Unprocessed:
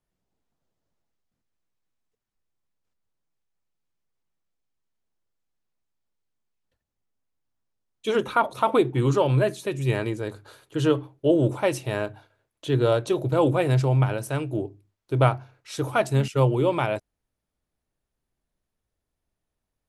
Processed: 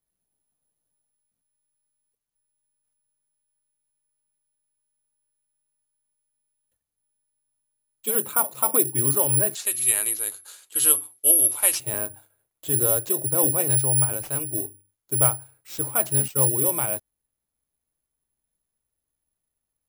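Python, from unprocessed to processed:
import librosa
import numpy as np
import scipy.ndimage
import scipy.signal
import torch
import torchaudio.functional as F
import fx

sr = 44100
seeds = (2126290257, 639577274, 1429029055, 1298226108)

y = (np.kron(x[::4], np.eye(4)[0]) * 4)[:len(x)]
y = fx.weighting(y, sr, curve='ITU-R 468', at=(9.55, 11.8))
y = y * 10.0 ** (-6.5 / 20.0)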